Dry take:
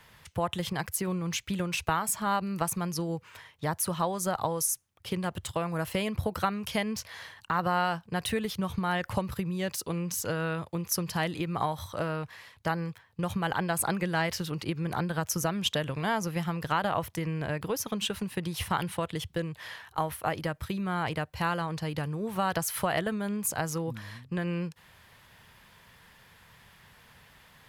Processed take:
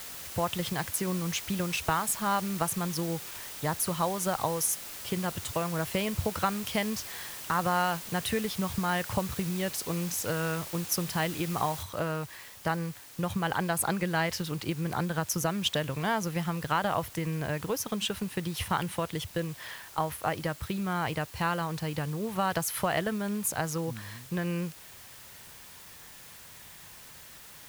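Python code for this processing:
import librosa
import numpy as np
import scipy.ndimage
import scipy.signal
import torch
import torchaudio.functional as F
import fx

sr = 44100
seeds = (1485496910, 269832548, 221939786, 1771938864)

y = fx.noise_floor_step(x, sr, seeds[0], at_s=11.83, before_db=-42, after_db=-50, tilt_db=0.0)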